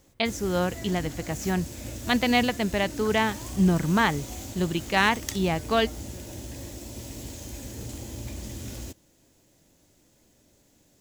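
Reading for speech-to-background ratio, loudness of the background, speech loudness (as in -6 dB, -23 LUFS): 12.0 dB, -38.0 LUFS, -26.0 LUFS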